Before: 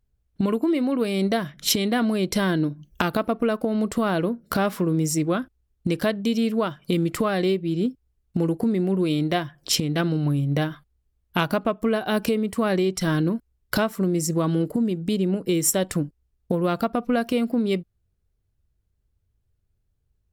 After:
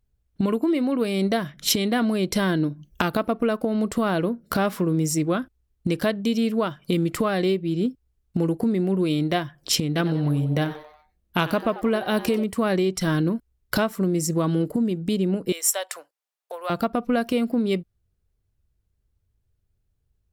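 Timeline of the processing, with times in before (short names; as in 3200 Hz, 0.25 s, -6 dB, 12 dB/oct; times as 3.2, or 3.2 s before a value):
9.88–12.44 frequency-shifting echo 93 ms, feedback 45%, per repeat +150 Hz, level -15.5 dB
15.52–16.7 inverse Chebyshev high-pass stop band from 240 Hz, stop band 50 dB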